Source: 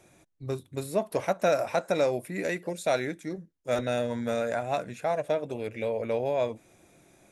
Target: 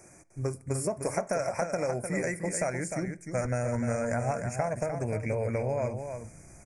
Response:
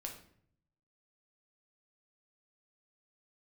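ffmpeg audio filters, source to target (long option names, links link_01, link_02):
-filter_complex "[0:a]aemphasis=mode=production:type=cd,atempo=1.1,acompressor=threshold=-30dB:ratio=6,asubboost=boost=6:cutoff=130,aecho=1:1:303:0.447,asplit=2[link_01][link_02];[1:a]atrim=start_sample=2205,lowpass=5400,adelay=47[link_03];[link_02][link_03]afir=irnorm=-1:irlink=0,volume=-17.5dB[link_04];[link_01][link_04]amix=inputs=2:normalize=0,aresample=22050,aresample=44100,asuperstop=centerf=3400:order=8:qfactor=1.3,volume=4dB"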